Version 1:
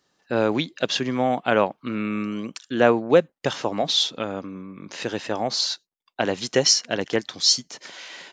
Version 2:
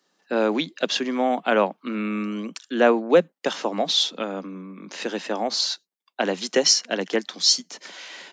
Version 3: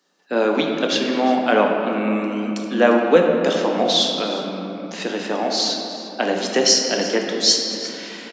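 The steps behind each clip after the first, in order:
steep high-pass 170 Hz 72 dB/oct
echo 0.35 s -17.5 dB; shoebox room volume 150 m³, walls hard, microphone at 0.4 m; gain +1.5 dB

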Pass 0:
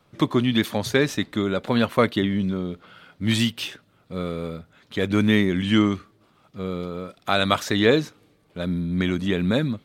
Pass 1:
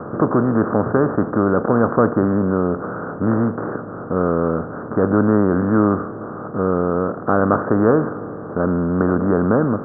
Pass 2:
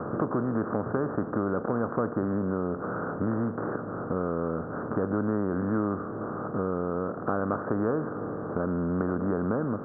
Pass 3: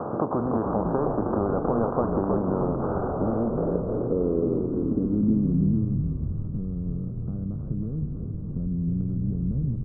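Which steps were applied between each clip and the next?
per-bin compression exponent 0.4; steep low-pass 1500 Hz 72 dB/oct
compressor 2.5:1, threshold -25 dBFS, peak gain reduction 10.5 dB; gain -3 dB
low-pass sweep 860 Hz -> 150 Hz, 2.87–6.13; on a send: frequency-shifting echo 0.315 s, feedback 59%, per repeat -56 Hz, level -3.5 dB; on the sum: mismatched tape noise reduction encoder only

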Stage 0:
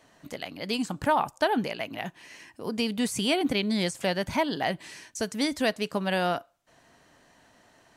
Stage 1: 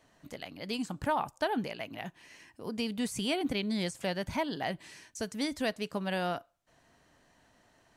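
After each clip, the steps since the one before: low shelf 98 Hz +8 dB; gain -6.5 dB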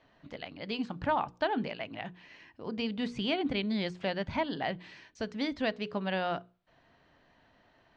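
LPF 4200 Hz 24 dB/oct; notches 60/120/180/240/300/360/420/480 Hz; gain +1 dB

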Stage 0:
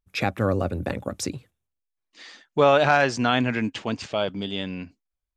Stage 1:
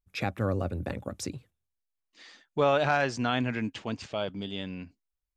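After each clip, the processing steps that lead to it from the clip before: low shelf 120 Hz +5.5 dB; gain -7 dB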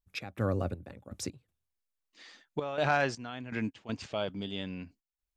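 step gate "x.xx..x.xxxxx" 81 bpm -12 dB; gain -1.5 dB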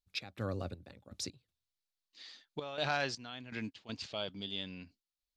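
bell 4200 Hz +13 dB 1.1 oct; gain -7.5 dB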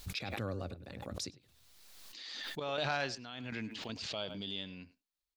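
speakerphone echo 0.1 s, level -17 dB; backwards sustainer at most 27 dB/s; gain -1.5 dB

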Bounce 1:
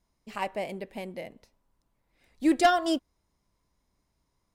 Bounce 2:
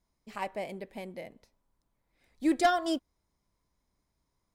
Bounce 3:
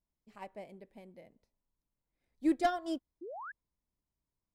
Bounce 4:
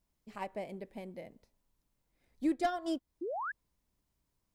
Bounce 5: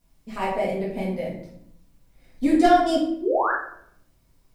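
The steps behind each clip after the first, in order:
notch 2800 Hz, Q 16; gain -3.5 dB
tilt shelf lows +3.5 dB, about 650 Hz; painted sound rise, 3.21–3.52, 310–1800 Hz -33 dBFS; upward expander 1.5:1, over -39 dBFS; gain -4 dB
compressor 2:1, threshold -45 dBFS, peak gain reduction 11.5 dB; gain +8.5 dB
shoebox room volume 130 m³, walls mixed, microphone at 1.8 m; gain +8.5 dB

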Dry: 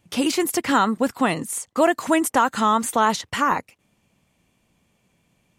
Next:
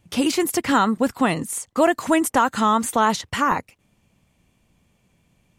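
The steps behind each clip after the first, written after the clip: low shelf 110 Hz +9.5 dB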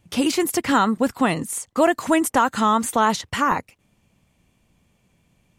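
nothing audible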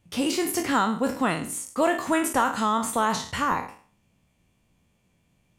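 spectral trails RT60 0.45 s; gain -6 dB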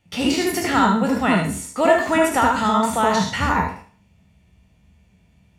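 reverb RT60 0.10 s, pre-delay 71 ms, DRR 3 dB; gain -2 dB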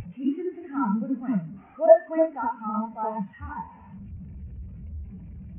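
delta modulation 16 kbps, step -16.5 dBFS; spectral expander 2.5:1

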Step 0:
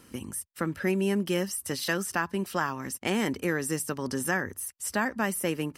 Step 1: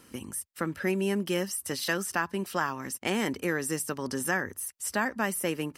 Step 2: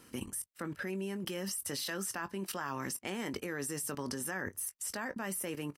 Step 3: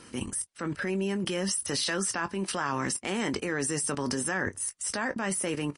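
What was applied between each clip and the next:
low shelf 210 Hz -4.5 dB
level quantiser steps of 21 dB; doubler 21 ms -13 dB; gain +4 dB
transient shaper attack -5 dB, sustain +1 dB; gain +9 dB; MP3 40 kbps 32000 Hz

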